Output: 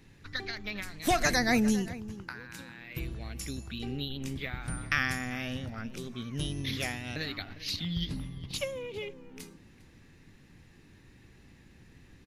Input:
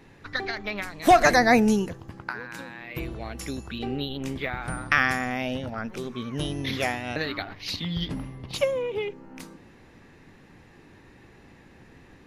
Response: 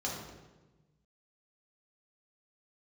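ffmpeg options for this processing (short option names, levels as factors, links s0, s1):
-filter_complex "[0:a]equalizer=f=740:w=0.41:g=-12.5,asplit=2[s0][s1];[s1]adelay=402.3,volume=0.158,highshelf=f=4000:g=-9.05[s2];[s0][s2]amix=inputs=2:normalize=0"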